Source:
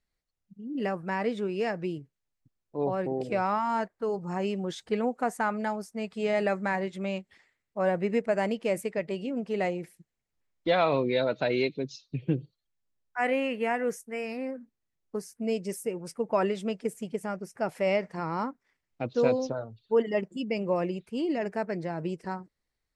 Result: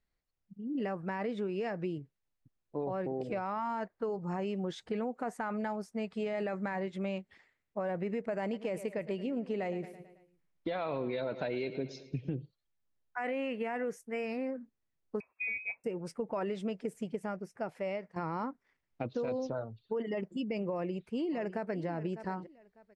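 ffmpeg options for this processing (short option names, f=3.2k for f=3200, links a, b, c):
-filter_complex "[0:a]asettb=1/sr,asplit=3[a][b][c];[a]atrim=end=8.424[d];[b]atrim=start=8.42:end=12.3,asetpts=PTS-STARTPTS,afade=t=in:d=0.004:c=qsin,afade=t=out:st=3.876:d=0.004:c=qsin,aecho=1:1:110|220|330|440|550:0.126|0.0692|0.0381|0.0209|0.0115,atrim=end_sample=171108[e];[c]atrim=start=12.296[f];[d][e]acrossfade=d=0.004:c1=hsin:c2=qsin[g];[g][f]acrossfade=d=0.004:c1=qsin:c2=hsin,asettb=1/sr,asplit=3[h][i][j];[h]atrim=end=15.204[k];[i]atrim=start=15.2:end=15.84,asetpts=PTS-STARTPTS,afade=t=in:d=0.004:c=qsin,afade=t=out:st=0.636:d=0.004:c=qsin,lowpass=f=2.3k:t=q:w=0.5098,lowpass=f=2.3k:t=q:w=0.6013,lowpass=f=2.3k:t=q:w=0.9,lowpass=f=2.3k:t=q:w=2.563,afreqshift=-2700[l];[j]atrim=start=15.836[m];[k][l]acrossfade=d=0.004:c1=hsin:c2=qsin[n];[n][m]acrossfade=d=0.004:c1=qsin:c2=hsin,asplit=2[o][p];[p]afade=t=in:st=20.72:d=0.01,afade=t=out:st=21.86:d=0.01,aecho=0:1:600|1200:0.158489|0.0316979[q];[o][q]amix=inputs=2:normalize=0,asplit=2[r][s];[r]atrim=end=18.16,asetpts=PTS-STARTPTS,afade=t=out:st=16.98:d=1.18:silence=0.223872[t];[s]atrim=start=18.16,asetpts=PTS-STARTPTS,afade=t=in:d=0.004:c=hsin:silence=0.223872[u];[t][u]concat=n=2:v=0:a=1,alimiter=limit=-22dB:level=0:latency=1:release=11,acompressor=threshold=-31dB:ratio=6,lowpass=f=3.1k:p=1"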